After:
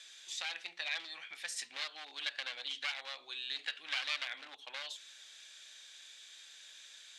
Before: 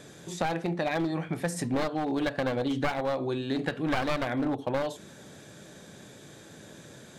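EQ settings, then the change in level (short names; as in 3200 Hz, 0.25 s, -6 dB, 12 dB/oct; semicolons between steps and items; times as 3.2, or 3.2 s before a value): ladder band-pass 3900 Hz, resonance 25%; +13.0 dB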